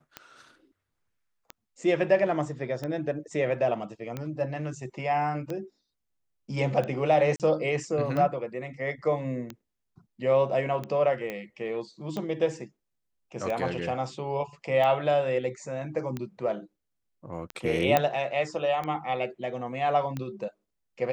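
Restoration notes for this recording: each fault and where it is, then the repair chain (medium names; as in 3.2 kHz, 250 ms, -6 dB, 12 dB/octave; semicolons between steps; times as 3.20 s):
tick 45 rpm -20 dBFS
7.36–7.40 s: dropout 38 ms
11.30 s: pop -20 dBFS
17.97 s: pop -8 dBFS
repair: de-click; interpolate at 7.36 s, 38 ms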